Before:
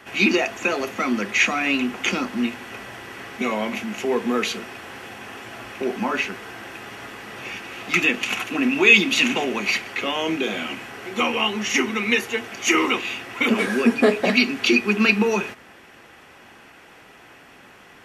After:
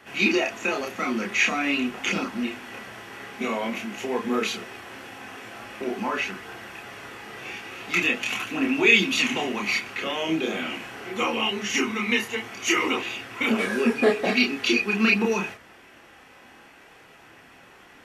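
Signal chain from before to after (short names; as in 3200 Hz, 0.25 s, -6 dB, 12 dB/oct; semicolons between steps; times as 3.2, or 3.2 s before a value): chorus voices 2, 0.23 Hz, delay 29 ms, depth 2.8 ms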